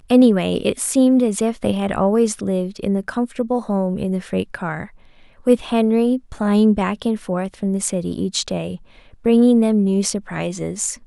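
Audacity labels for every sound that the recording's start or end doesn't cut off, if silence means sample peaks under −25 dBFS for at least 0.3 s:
5.470000	8.750000	sound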